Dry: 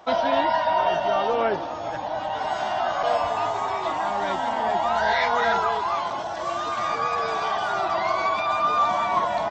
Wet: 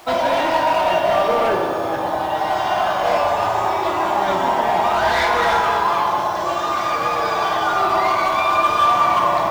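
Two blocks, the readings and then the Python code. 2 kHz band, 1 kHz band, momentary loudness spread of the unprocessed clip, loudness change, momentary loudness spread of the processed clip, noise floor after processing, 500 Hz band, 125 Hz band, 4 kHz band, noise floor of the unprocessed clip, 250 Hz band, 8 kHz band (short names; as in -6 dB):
+5.5 dB, +6.0 dB, 7 LU, +6.0 dB, 5 LU, -22 dBFS, +5.5 dB, +7.5 dB, +6.0 dB, -30 dBFS, +7.0 dB, n/a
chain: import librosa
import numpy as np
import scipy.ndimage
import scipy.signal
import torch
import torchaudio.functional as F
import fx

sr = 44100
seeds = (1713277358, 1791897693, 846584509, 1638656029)

y = np.clip(x, -10.0 ** (-20.0 / 20.0), 10.0 ** (-20.0 / 20.0))
y = fx.rev_fdn(y, sr, rt60_s=2.5, lf_ratio=1.0, hf_ratio=0.45, size_ms=17.0, drr_db=0.0)
y = fx.quant_dither(y, sr, seeds[0], bits=8, dither='none')
y = y * 10.0 ** (4.0 / 20.0)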